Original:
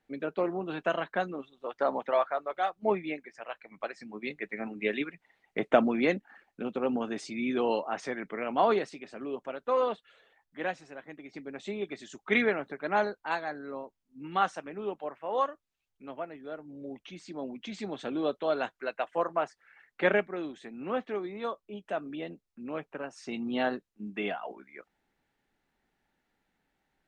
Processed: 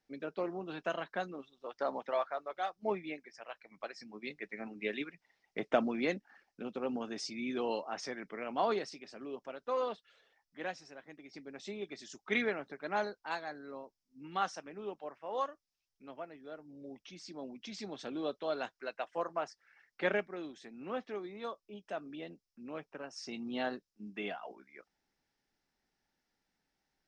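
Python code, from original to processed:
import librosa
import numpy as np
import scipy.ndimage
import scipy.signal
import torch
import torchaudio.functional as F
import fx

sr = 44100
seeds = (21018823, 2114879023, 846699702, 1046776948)

y = fx.peak_eq(x, sr, hz=5300.0, db=15.0, octaves=0.54)
y = y * librosa.db_to_amplitude(-7.0)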